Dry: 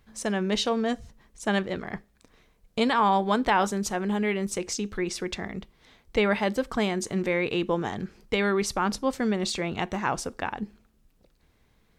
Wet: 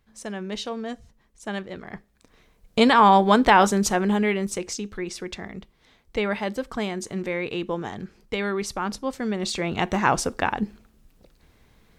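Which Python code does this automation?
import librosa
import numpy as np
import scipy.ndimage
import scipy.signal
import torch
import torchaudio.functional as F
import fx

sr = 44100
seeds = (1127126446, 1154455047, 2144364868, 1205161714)

y = fx.gain(x, sr, db=fx.line((1.69, -5.5), (2.84, 7.0), (3.92, 7.0), (4.91, -2.0), (9.21, -2.0), (10.0, 7.0)))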